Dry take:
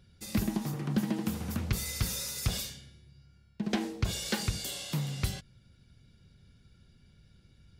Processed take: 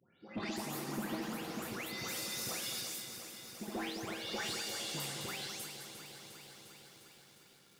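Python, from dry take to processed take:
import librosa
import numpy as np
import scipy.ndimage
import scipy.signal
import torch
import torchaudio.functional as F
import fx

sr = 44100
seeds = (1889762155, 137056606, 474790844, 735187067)

p1 = fx.spec_delay(x, sr, highs='late', ms=357)
p2 = scipy.signal.sosfilt(scipy.signal.butter(2, 360.0, 'highpass', fs=sr, output='sos'), p1)
p3 = fx.high_shelf(p2, sr, hz=5000.0, db=-5.5)
p4 = fx.rider(p3, sr, range_db=10, speed_s=2.0)
p5 = p3 + F.gain(torch.from_numpy(p4), 3.0).numpy()
p6 = 10.0 ** (-26.5 / 20.0) * np.tanh(p5 / 10.0 ** (-26.5 / 20.0))
p7 = p6 + fx.echo_single(p6, sr, ms=209, db=-8.5, dry=0)
p8 = fx.echo_crushed(p7, sr, ms=353, feedback_pct=80, bits=9, wet_db=-10.0)
y = F.gain(torch.from_numpy(p8), -6.5).numpy()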